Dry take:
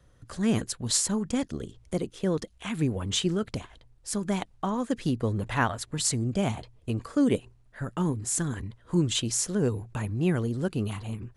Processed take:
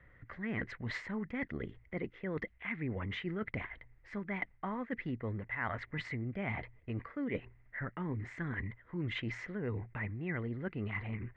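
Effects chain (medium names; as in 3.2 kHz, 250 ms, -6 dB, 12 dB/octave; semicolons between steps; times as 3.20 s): four-pole ladder low-pass 2.1 kHz, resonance 85%; reverse; compression 6:1, threshold -45 dBFS, peak gain reduction 17.5 dB; reverse; trim +10 dB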